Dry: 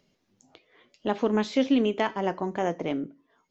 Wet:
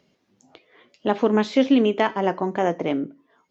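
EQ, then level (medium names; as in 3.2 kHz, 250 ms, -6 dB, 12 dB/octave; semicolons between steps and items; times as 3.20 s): high-pass 120 Hz 6 dB/octave; treble shelf 5.1 kHz -7.5 dB; +6.0 dB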